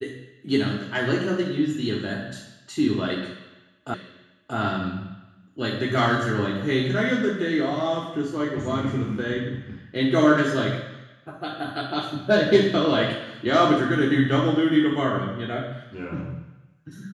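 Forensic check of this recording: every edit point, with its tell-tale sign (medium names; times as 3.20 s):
3.94 s: repeat of the last 0.63 s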